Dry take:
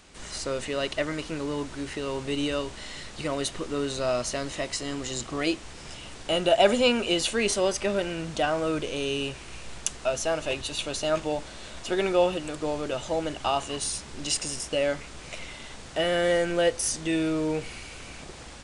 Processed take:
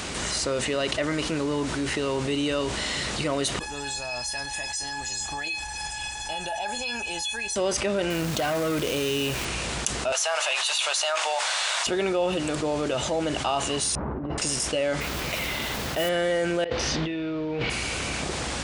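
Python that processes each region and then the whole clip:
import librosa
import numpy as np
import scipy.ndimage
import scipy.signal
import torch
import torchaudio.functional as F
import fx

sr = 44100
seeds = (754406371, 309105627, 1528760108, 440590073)

y = fx.chain(x, sr, fx.peak_eq(hz=190.0, db=-4.5, octaves=2.3),
    fx.comb_fb(f0_hz=840.0, decay_s=0.18, harmonics='all', damping=0.0, mix_pct=100),
    fx.env_flatten(amount_pct=50), at=(3.59, 7.56))
y = fx.chain(y, sr, fx.clip_hard(threshold_db=-26.0),
    fx.quant_companded(bits=4), at=(8.1, 9.45))
y = fx.chain(y, sr, fx.cheby2_highpass(hz=220.0, order=4, stop_db=60),
    fx.env_flatten(amount_pct=70), at=(10.12, 11.87))
y = fx.chain(y, sr, fx.lowpass(hz=1200.0, slope=24),
    fx.over_compress(threshold_db=-40.0, ratio=-0.5), at=(13.95, 14.38))
y = fx.chain(y, sr, fx.lowpass(hz=5400.0, slope=12),
    fx.mod_noise(seeds[0], snr_db=12), at=(15.0, 16.09))
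y = fx.chain(y, sr, fx.lowpass(hz=4100.0, slope=24),
    fx.over_compress(threshold_db=-37.0, ratio=-1.0), at=(16.64, 17.7))
y = scipy.signal.sosfilt(scipy.signal.butter(2, 58.0, 'highpass', fs=sr, output='sos'), y)
y = fx.env_flatten(y, sr, amount_pct=70)
y = y * 10.0 ** (-4.5 / 20.0)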